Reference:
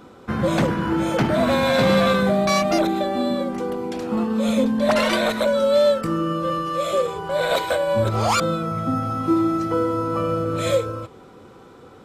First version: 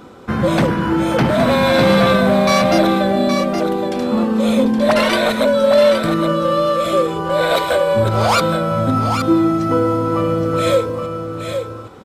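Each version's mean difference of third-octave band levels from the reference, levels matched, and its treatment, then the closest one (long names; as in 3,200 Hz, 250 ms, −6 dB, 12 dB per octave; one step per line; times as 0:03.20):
2.5 dB: dynamic equaliser 6,900 Hz, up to −6 dB, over −53 dBFS, Q 5
in parallel at −6.5 dB: soft clipping −16.5 dBFS, distortion −15 dB
on the sum: single-tap delay 819 ms −7 dB
level +2 dB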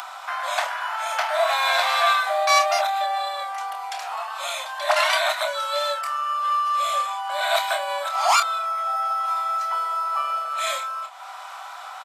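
15.5 dB: Butterworth high-pass 640 Hz 96 dB per octave
double-tracking delay 28 ms −7 dB
upward compression, threshold −27 dBFS
level +2 dB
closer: first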